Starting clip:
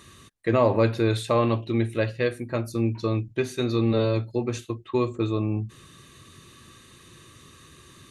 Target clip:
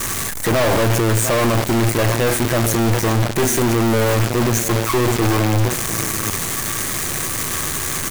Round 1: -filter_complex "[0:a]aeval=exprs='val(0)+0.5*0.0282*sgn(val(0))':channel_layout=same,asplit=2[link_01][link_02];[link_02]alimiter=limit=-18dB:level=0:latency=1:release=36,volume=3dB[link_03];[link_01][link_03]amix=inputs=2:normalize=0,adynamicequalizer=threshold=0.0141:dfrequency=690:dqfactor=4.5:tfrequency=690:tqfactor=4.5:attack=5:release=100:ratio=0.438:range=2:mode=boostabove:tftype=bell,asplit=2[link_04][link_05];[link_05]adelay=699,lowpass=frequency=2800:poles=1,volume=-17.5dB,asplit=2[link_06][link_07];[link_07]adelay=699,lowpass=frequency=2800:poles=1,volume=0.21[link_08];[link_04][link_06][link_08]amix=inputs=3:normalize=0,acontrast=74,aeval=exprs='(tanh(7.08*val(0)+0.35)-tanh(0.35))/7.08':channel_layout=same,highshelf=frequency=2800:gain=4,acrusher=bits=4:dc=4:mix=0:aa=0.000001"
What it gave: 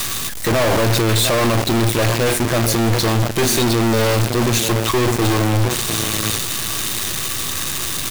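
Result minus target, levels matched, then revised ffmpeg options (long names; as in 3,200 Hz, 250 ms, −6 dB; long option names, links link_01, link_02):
4,000 Hz band +5.0 dB
-filter_complex "[0:a]aeval=exprs='val(0)+0.5*0.0282*sgn(val(0))':channel_layout=same,asplit=2[link_01][link_02];[link_02]alimiter=limit=-18dB:level=0:latency=1:release=36,volume=3dB[link_03];[link_01][link_03]amix=inputs=2:normalize=0,adynamicequalizer=threshold=0.0141:dfrequency=690:dqfactor=4.5:tfrequency=690:tqfactor=4.5:attack=5:release=100:ratio=0.438:range=2:mode=boostabove:tftype=bell,asuperstop=centerf=3700:order=12:qfactor=1.1,asplit=2[link_04][link_05];[link_05]adelay=699,lowpass=frequency=2800:poles=1,volume=-17.5dB,asplit=2[link_06][link_07];[link_07]adelay=699,lowpass=frequency=2800:poles=1,volume=0.21[link_08];[link_04][link_06][link_08]amix=inputs=3:normalize=0,acontrast=74,aeval=exprs='(tanh(7.08*val(0)+0.35)-tanh(0.35))/7.08':channel_layout=same,highshelf=frequency=2800:gain=4,acrusher=bits=4:dc=4:mix=0:aa=0.000001"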